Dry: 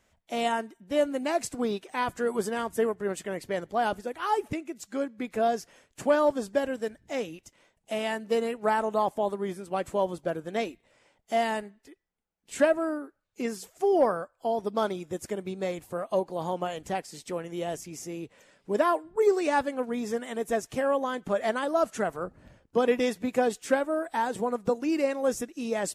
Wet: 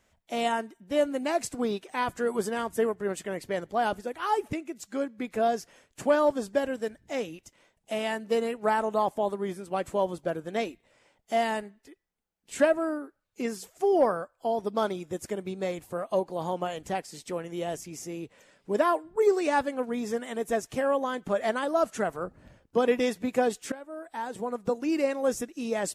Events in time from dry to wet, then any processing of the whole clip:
0:23.72–0:24.94: fade in, from −19.5 dB

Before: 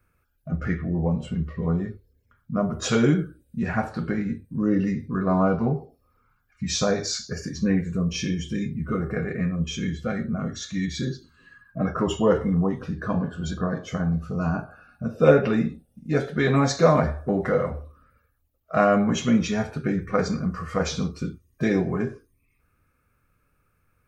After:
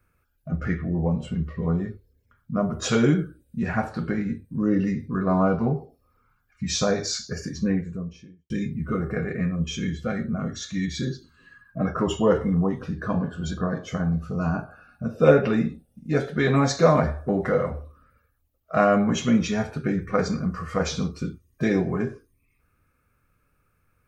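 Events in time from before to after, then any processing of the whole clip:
0:07.42–0:08.50: fade out and dull

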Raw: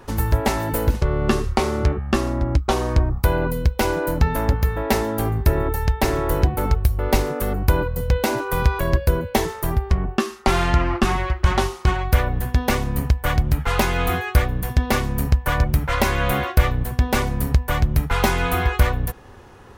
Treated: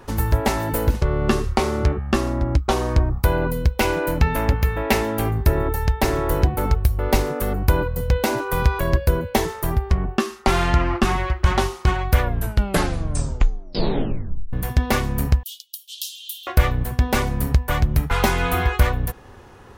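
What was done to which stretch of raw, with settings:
0:03.80–0:05.31: parametric band 2,500 Hz +6.5 dB 0.76 octaves
0:12.21: tape stop 2.32 s
0:15.43–0:16.47: Butterworth high-pass 3,000 Hz 96 dB per octave

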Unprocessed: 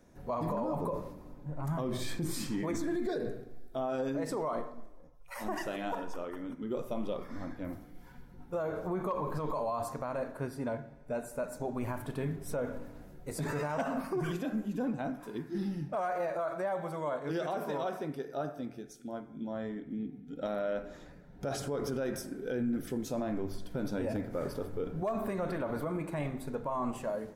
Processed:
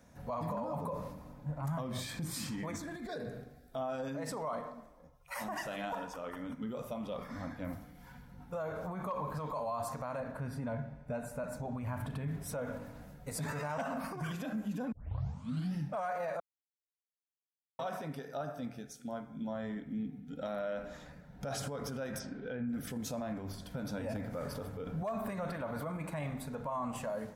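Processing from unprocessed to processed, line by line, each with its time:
0:10.20–0:12.28: bass and treble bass +6 dB, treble −6 dB
0:14.92: tape start 0.82 s
0:16.40–0:17.79: silence
0:22.18–0:22.68: low-pass filter 6,300 Hz → 2,600 Hz 24 dB per octave
whole clip: brickwall limiter −31 dBFS; high-pass filter 45 Hz; parametric band 360 Hz −15 dB 0.47 octaves; level +3 dB

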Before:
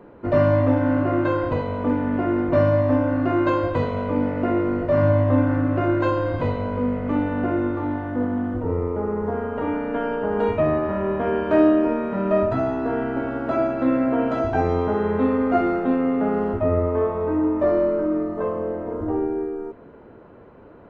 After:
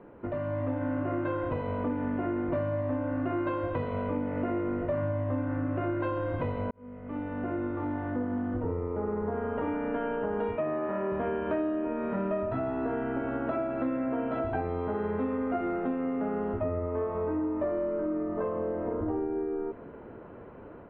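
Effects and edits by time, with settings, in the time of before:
0:06.71–0:08.79: fade in
0:10.55–0:11.12: band-pass filter 210–3,800 Hz
whole clip: downward compressor, threshold −28 dBFS; low-pass filter 3,200 Hz 24 dB per octave; automatic gain control gain up to 5 dB; level −5 dB

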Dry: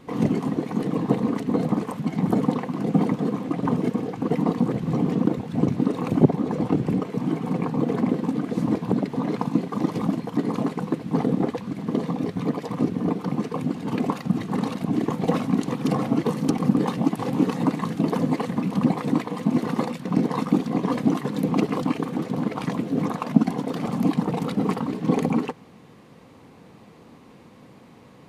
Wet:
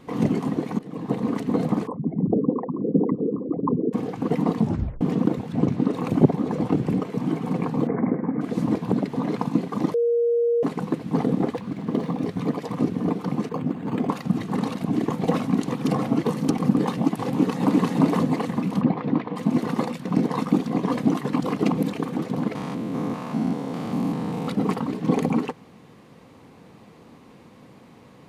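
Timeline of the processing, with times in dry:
0:00.79–0:01.35: fade in, from −18.5 dB
0:01.87–0:03.93: spectral envelope exaggerated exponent 3
0:04.59: tape stop 0.42 s
0:05.52–0:05.93: high-shelf EQ 8,300 Hz −9 dB
0:07.87–0:08.41: Chebyshev low-pass filter 2,200 Hz, order 6
0:09.94–0:10.63: beep over 471 Hz −17.5 dBFS
0:11.57–0:12.23: linearly interpolated sample-rate reduction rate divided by 3×
0:13.49–0:14.09: linearly interpolated sample-rate reduction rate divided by 8×
0:17.27–0:17.87: delay throw 350 ms, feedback 25%, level 0 dB
0:18.81–0:19.36: high-frequency loss of the air 290 metres
0:21.33–0:21.93: reverse
0:22.55–0:24.48: spectrum averaged block by block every 200 ms

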